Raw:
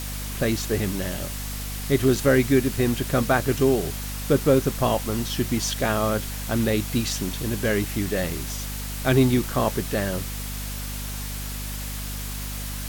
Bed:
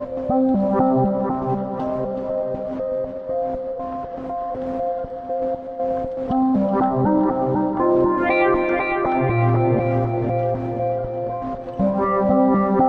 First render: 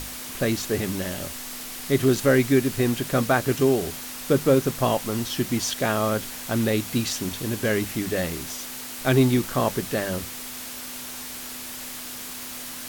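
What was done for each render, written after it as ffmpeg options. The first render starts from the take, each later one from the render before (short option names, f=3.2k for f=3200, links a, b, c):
-af "bandreject=f=50:t=h:w=6,bandreject=f=100:t=h:w=6,bandreject=f=150:t=h:w=6,bandreject=f=200:t=h:w=6"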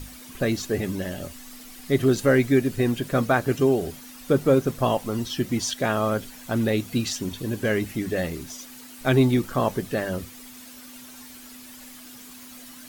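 -af "afftdn=nr=11:nf=-36"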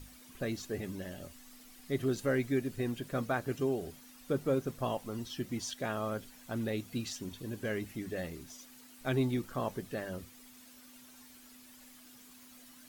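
-af "volume=-12dB"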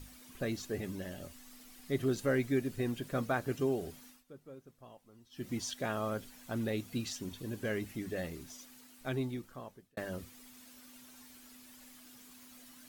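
-filter_complex "[0:a]asplit=4[a][b][c][d];[a]atrim=end=4.24,asetpts=PTS-STARTPTS,afade=t=out:st=4.06:d=0.18:silence=0.0944061[e];[b]atrim=start=4.24:end=5.31,asetpts=PTS-STARTPTS,volume=-20.5dB[f];[c]atrim=start=5.31:end=9.97,asetpts=PTS-STARTPTS,afade=t=in:d=0.18:silence=0.0944061,afade=t=out:st=3.27:d=1.39[g];[d]atrim=start=9.97,asetpts=PTS-STARTPTS,afade=t=in:d=0.004:c=hsin[h];[e][f][g][h]concat=n=4:v=0:a=1"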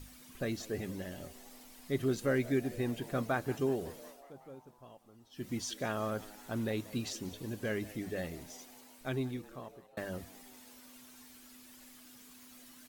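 -filter_complex "[0:a]asplit=7[a][b][c][d][e][f][g];[b]adelay=185,afreqshift=99,volume=-20dB[h];[c]adelay=370,afreqshift=198,volume=-23.7dB[i];[d]adelay=555,afreqshift=297,volume=-27.5dB[j];[e]adelay=740,afreqshift=396,volume=-31.2dB[k];[f]adelay=925,afreqshift=495,volume=-35dB[l];[g]adelay=1110,afreqshift=594,volume=-38.7dB[m];[a][h][i][j][k][l][m]amix=inputs=7:normalize=0"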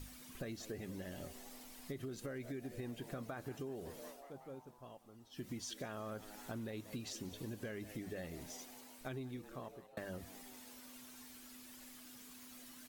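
-af "alimiter=level_in=2.5dB:limit=-24dB:level=0:latency=1,volume=-2.5dB,acompressor=threshold=-42dB:ratio=6"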